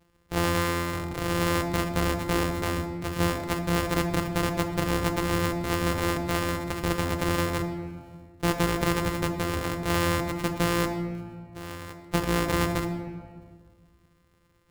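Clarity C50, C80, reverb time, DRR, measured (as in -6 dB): 8.0 dB, 9.5 dB, 1.7 s, 5.0 dB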